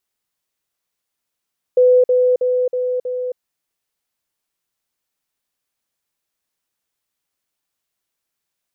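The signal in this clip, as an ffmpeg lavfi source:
ffmpeg -f lavfi -i "aevalsrc='pow(10,(-8-3*floor(t/0.32))/20)*sin(2*PI*501*t)*clip(min(mod(t,0.32),0.27-mod(t,0.32))/0.005,0,1)':duration=1.6:sample_rate=44100" out.wav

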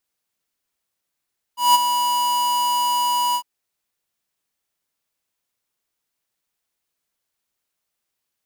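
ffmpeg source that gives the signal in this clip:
ffmpeg -f lavfi -i "aevalsrc='0.266*(2*lt(mod(975*t,1),0.5)-1)':duration=1.854:sample_rate=44100,afade=type=in:duration=0.176,afade=type=out:start_time=0.176:duration=0.024:silence=0.376,afade=type=out:start_time=1.78:duration=0.074" out.wav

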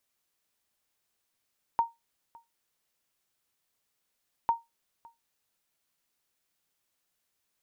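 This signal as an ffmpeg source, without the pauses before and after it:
ffmpeg -f lavfi -i "aevalsrc='0.141*(sin(2*PI*926*mod(t,2.7))*exp(-6.91*mod(t,2.7)/0.19)+0.0501*sin(2*PI*926*max(mod(t,2.7)-0.56,0))*exp(-6.91*max(mod(t,2.7)-0.56,0)/0.19))':duration=5.4:sample_rate=44100" out.wav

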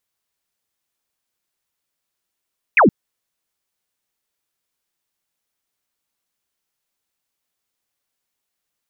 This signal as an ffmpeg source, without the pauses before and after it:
ffmpeg -f lavfi -i "aevalsrc='0.398*clip(t/0.002,0,1)*clip((0.12-t)/0.002,0,1)*sin(2*PI*2700*0.12/log(160/2700)*(exp(log(160/2700)*t/0.12)-1))':duration=0.12:sample_rate=44100" out.wav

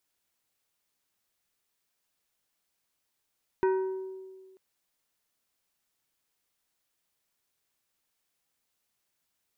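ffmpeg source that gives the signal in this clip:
ffmpeg -f lavfi -i "aevalsrc='0.0891*pow(10,-3*t/1.7)*sin(2*PI*379*t)+0.0376*pow(10,-3*t/0.895)*sin(2*PI*947.5*t)+0.0158*pow(10,-3*t/0.644)*sin(2*PI*1516*t)+0.00668*pow(10,-3*t/0.551)*sin(2*PI*1895*t)+0.00282*pow(10,-3*t/0.459)*sin(2*PI*2463.5*t)':duration=0.94:sample_rate=44100" out.wav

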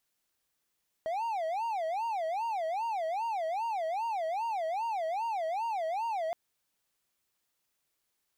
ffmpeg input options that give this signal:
ffmpeg -f lavfi -i "aevalsrc='0.0398*(1-4*abs(mod((784*t-147/(2*PI*2.5)*sin(2*PI*2.5*t))+0.25,1)-0.5))':duration=5.27:sample_rate=44100" out.wav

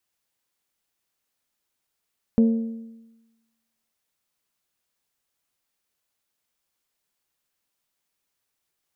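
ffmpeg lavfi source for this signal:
ffmpeg -f lavfi -i "aevalsrc='0.251*pow(10,-3*t/1.09)*sin(2*PI*227*t)+0.0708*pow(10,-3*t/0.885)*sin(2*PI*454*t)+0.02*pow(10,-3*t/0.838)*sin(2*PI*544.8*t)+0.00562*pow(10,-3*t/0.784)*sin(2*PI*681*t)+0.00158*pow(10,-3*t/0.719)*sin(2*PI*908*t)':duration=1.55:sample_rate=44100" out.wav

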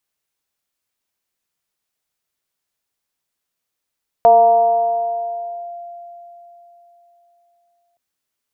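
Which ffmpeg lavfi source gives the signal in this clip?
ffmpeg -f lavfi -i "aevalsrc='0.562*pow(10,-3*t/3.76)*sin(2*PI*693*t+0.52*clip(1-t/1.52,0,1)*sin(2*PI*0.34*693*t))':duration=3.72:sample_rate=44100" out.wav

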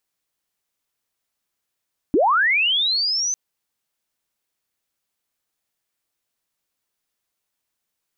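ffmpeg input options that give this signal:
ffmpeg -f lavfi -i "aevalsrc='pow(10,(-13-7*t/1.2)/20)*sin(2*PI*(250*t+5950*t*t/(2*1.2)))':duration=1.2:sample_rate=44100" out.wav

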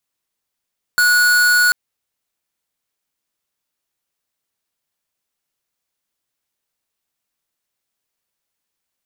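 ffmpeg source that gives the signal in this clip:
ffmpeg -f lavfi -i "aevalsrc='0.224*(2*lt(mod(1460*t,1),0.5)-1)':duration=0.74:sample_rate=44100" out.wav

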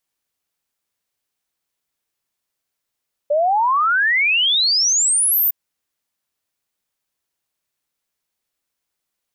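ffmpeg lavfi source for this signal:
ffmpeg -f lavfi -i "aevalsrc='0.211*clip(min(t,2.21-t)/0.01,0,1)*sin(2*PI*570*2.21/log(15000/570)*(exp(log(15000/570)*t/2.21)-1))':duration=2.21:sample_rate=44100" out.wav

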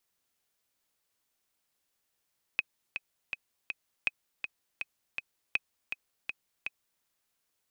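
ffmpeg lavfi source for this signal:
ffmpeg -f lavfi -i "aevalsrc='pow(10,(-13.5-7.5*gte(mod(t,4*60/162),60/162))/20)*sin(2*PI*2530*mod(t,60/162))*exp(-6.91*mod(t,60/162)/0.03)':duration=4.44:sample_rate=44100" out.wav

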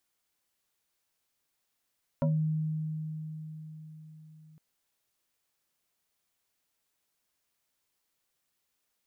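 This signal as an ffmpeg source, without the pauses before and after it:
ffmpeg -f lavfi -i "aevalsrc='0.0708*pow(10,-3*t/4.71)*sin(2*PI*156*t+1.6*pow(10,-3*t/0.26)*sin(2*PI*2.58*156*t))':duration=2.36:sample_rate=44100" out.wav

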